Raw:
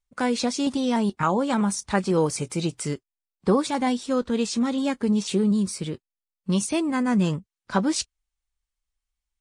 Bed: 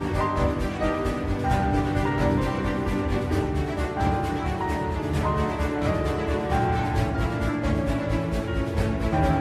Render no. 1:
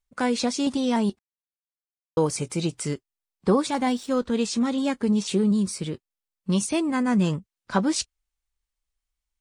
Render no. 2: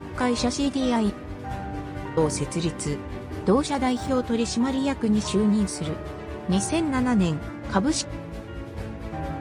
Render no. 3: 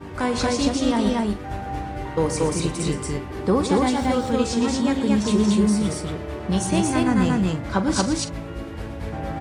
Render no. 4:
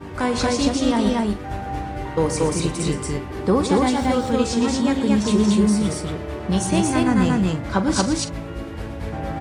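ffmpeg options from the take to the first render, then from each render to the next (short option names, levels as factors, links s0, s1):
-filter_complex "[0:a]asettb=1/sr,asplit=3[s0][s1][s2];[s0]atrim=end=3.754[s3];[s1]atrim=start=3.75:end=4.21,asetpts=PTS-STARTPTS,afade=t=in:d=0.004:c=qsin,afade=t=out:st=0.456:d=0.004:c=qsin,aeval=exprs='sgn(val(0))*max(abs(val(0))-0.00335,0)':c=same[s4];[s2]atrim=start=4.206[s5];[s3][s4]acrossfade=d=0.004:c1=hsin:c2=qsin[s6];[s6][s5]acrossfade=d=0.004:c1=qsin:c2=hsin,asplit=3[s7][s8][s9];[s7]atrim=end=1.19,asetpts=PTS-STARTPTS,afade=t=out:st=1.186:d=0.004:c=hsin[s10];[s8]atrim=start=1.19:end=2.17,asetpts=PTS-STARTPTS,volume=0[s11];[s9]atrim=start=2.17,asetpts=PTS-STARTPTS,afade=t=in:d=0.004:c=hsin[s12];[s10][s11][s12]concat=n=3:v=0:a=1"
-filter_complex "[1:a]volume=0.335[s0];[0:a][s0]amix=inputs=2:normalize=0"
-filter_complex "[0:a]asplit=2[s0][s1];[s1]adelay=43,volume=0.237[s2];[s0][s2]amix=inputs=2:normalize=0,asplit=2[s3][s4];[s4]aecho=0:1:119.5|230.3:0.282|0.891[s5];[s3][s5]amix=inputs=2:normalize=0"
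-af "volume=1.19"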